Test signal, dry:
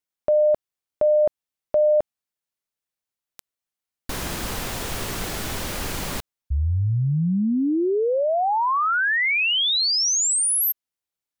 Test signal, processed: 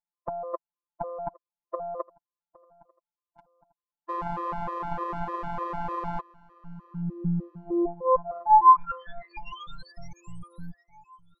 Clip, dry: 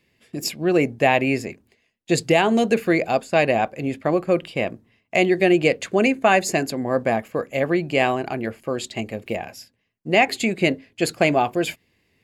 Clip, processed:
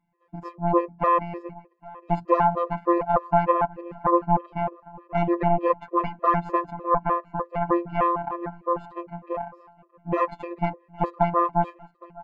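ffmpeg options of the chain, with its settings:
-filter_complex "[0:a]acrossover=split=360[a][b];[a]alimiter=limit=-20.5dB:level=0:latency=1:release=126[c];[c][b]amix=inputs=2:normalize=0,afftfilt=real='hypot(re,im)*cos(PI*b)':imag='0':win_size=1024:overlap=0.75,aeval=exprs='0.708*(cos(1*acos(clip(val(0)/0.708,-1,1)))-cos(1*PI/2))+0.0631*(cos(2*acos(clip(val(0)/0.708,-1,1)))-cos(2*PI/2))+0.126*(cos(5*acos(clip(val(0)/0.708,-1,1)))-cos(5*PI/2))+0.158*(cos(6*acos(clip(val(0)/0.708,-1,1)))-cos(6*PI/2))+0.0708*(cos(7*acos(clip(val(0)/0.708,-1,1)))-cos(7*PI/2))':c=same,lowpass=f=1k:t=q:w=5.5,asplit=2[d][e];[e]aecho=0:1:812|1624|2436:0.0708|0.0297|0.0125[f];[d][f]amix=inputs=2:normalize=0,afftfilt=real='re*gt(sin(2*PI*3.3*pts/sr)*(1-2*mod(floor(b*sr/1024/340),2)),0)':imag='im*gt(sin(2*PI*3.3*pts/sr)*(1-2*mod(floor(b*sr/1024/340),2)),0)':win_size=1024:overlap=0.75,volume=-3.5dB"

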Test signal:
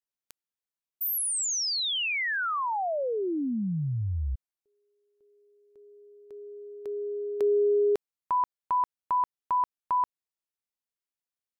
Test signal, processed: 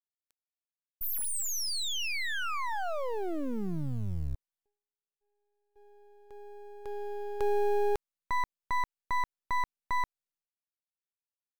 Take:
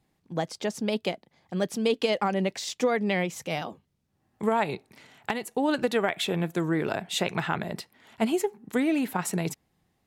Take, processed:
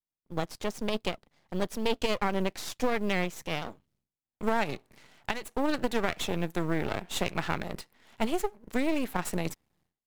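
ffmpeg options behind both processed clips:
-af "agate=range=-33dB:threshold=-54dB:ratio=3:release=386:detection=peak,aeval=exprs='max(val(0),0)':c=same,acrusher=bits=9:mode=log:mix=0:aa=0.000001"

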